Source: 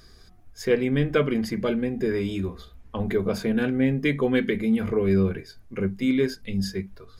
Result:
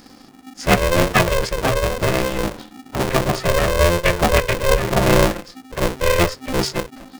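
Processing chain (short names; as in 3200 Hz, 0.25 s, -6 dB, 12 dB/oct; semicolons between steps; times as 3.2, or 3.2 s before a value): formant-preserving pitch shift -8 st; polarity switched at an audio rate 260 Hz; gain +7 dB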